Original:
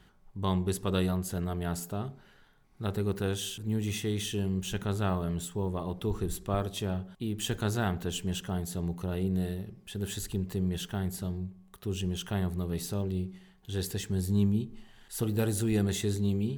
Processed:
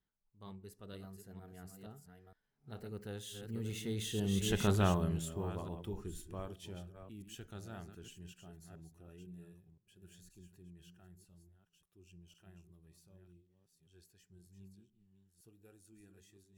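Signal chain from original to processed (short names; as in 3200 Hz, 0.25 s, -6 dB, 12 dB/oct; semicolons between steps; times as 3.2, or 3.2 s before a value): reverse delay 0.489 s, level -7 dB; Doppler pass-by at 4.66, 16 m/s, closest 4.8 m; spectral noise reduction 7 dB; gain +1 dB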